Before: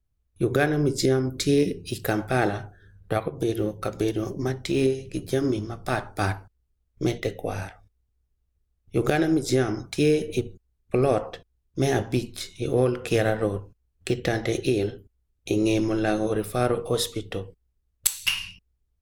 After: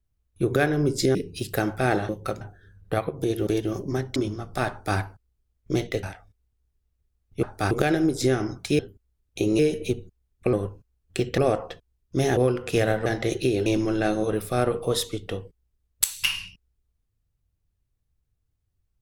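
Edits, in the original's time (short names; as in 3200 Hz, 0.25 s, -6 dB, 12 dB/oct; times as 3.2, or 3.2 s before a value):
1.15–1.66 cut
3.66–3.98 move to 2.6
4.67–5.47 cut
6.01–6.29 copy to 8.99
7.34–7.59 cut
12–12.75 cut
13.44–14.29 move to 11.01
14.89–15.69 move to 10.07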